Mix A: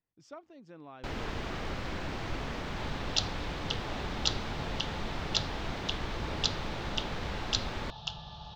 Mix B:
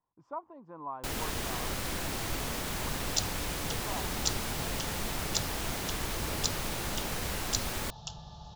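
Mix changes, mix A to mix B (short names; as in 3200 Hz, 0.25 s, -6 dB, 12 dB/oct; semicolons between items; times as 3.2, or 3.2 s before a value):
speech: add synth low-pass 1000 Hz, resonance Q 8.9; second sound: add bell 2900 Hz -13.5 dB 2.3 oct; master: remove air absorption 200 m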